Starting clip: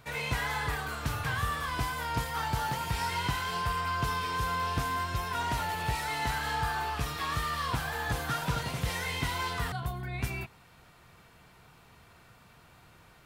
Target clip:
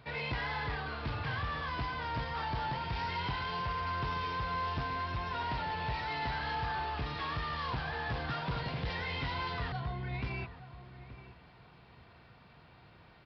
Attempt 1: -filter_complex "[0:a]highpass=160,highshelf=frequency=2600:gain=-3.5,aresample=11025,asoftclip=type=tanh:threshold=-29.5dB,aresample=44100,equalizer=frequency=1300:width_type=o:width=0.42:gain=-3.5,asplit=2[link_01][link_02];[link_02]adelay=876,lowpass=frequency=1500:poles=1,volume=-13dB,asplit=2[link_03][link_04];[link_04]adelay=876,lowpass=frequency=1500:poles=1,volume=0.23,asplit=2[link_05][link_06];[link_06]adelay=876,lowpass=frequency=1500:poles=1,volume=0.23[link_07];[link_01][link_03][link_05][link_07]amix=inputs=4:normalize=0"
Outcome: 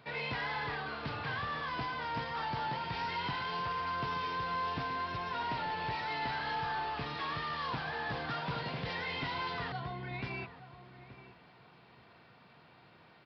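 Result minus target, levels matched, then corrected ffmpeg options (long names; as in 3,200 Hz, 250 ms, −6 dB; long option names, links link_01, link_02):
125 Hz band −5.0 dB
-filter_complex "[0:a]highpass=44,highshelf=frequency=2600:gain=-3.5,aresample=11025,asoftclip=type=tanh:threshold=-29.5dB,aresample=44100,equalizer=frequency=1300:width_type=o:width=0.42:gain=-3.5,asplit=2[link_01][link_02];[link_02]adelay=876,lowpass=frequency=1500:poles=1,volume=-13dB,asplit=2[link_03][link_04];[link_04]adelay=876,lowpass=frequency=1500:poles=1,volume=0.23,asplit=2[link_05][link_06];[link_06]adelay=876,lowpass=frequency=1500:poles=1,volume=0.23[link_07];[link_01][link_03][link_05][link_07]amix=inputs=4:normalize=0"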